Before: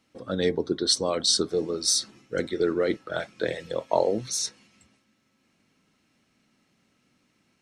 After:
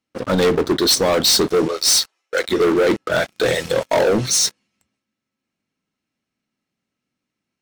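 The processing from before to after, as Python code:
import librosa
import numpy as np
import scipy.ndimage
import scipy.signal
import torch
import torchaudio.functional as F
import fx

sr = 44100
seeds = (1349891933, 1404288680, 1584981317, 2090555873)

y = fx.highpass(x, sr, hz=570.0, slope=24, at=(1.68, 2.49))
y = fx.high_shelf(y, sr, hz=5500.0, db=10.5, at=(3.3, 3.94))
y = fx.leveller(y, sr, passes=5)
y = F.gain(torch.from_numpy(y), -3.0).numpy()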